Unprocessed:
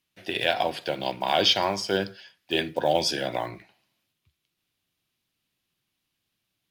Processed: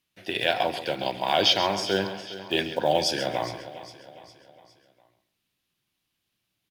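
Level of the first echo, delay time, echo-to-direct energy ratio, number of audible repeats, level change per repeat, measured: -12.0 dB, 0.134 s, -9.5 dB, 8, no steady repeat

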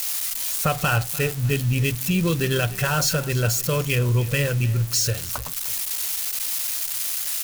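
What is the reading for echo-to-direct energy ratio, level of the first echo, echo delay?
-18.0 dB, -18.5 dB, 0.3 s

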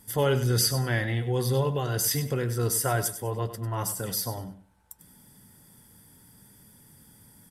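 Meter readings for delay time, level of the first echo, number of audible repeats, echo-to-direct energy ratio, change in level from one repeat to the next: 98 ms, -12.0 dB, 2, -11.5 dB, -12.0 dB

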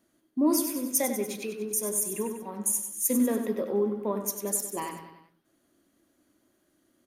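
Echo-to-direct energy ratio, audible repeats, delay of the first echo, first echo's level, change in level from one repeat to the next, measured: -7.0 dB, 4, 96 ms, -8.5 dB, -5.5 dB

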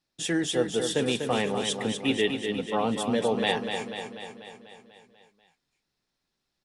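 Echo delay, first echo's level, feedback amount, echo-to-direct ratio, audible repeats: 0.245 s, -6.5 dB, 60%, -4.5 dB, 7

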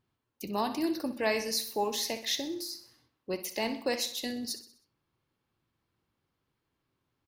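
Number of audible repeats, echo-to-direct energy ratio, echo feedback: 4, -11.5 dB, 49%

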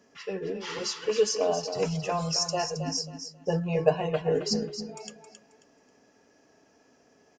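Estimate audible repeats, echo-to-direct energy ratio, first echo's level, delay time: 3, -8.5 dB, -9.0 dB, 0.269 s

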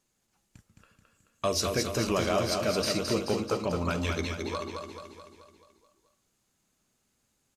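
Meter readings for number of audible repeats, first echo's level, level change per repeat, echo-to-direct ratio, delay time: 6, -4.5 dB, -5.5 dB, -3.0 dB, 0.216 s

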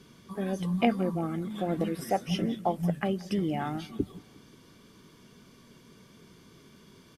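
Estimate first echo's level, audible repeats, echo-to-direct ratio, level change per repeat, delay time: -22.0 dB, 3, -20.5 dB, -6.0 dB, 0.179 s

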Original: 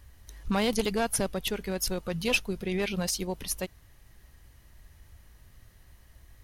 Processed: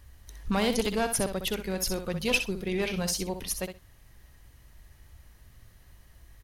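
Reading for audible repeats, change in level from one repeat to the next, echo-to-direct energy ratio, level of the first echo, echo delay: 2, -16.0 dB, -8.5 dB, -8.5 dB, 63 ms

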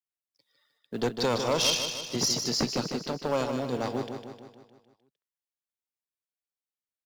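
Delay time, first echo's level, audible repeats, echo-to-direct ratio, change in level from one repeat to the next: 0.153 s, -7.0 dB, 6, -5.5 dB, -5.0 dB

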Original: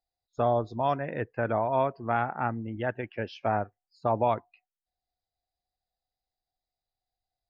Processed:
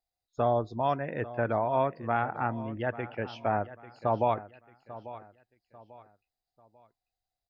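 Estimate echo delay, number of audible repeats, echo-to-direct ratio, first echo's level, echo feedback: 0.843 s, 3, -15.5 dB, -16.0 dB, 35%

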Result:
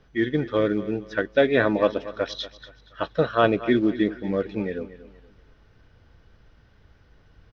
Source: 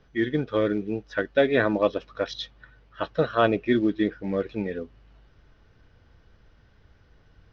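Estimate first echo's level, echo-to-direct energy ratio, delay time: -15.5 dB, -15.0 dB, 0.236 s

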